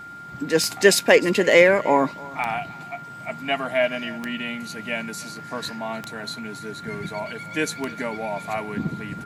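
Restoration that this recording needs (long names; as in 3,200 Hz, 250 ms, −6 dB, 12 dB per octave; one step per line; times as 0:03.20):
clipped peaks rebuilt −3 dBFS
click removal
notch filter 1,400 Hz, Q 30
echo removal 305 ms −21 dB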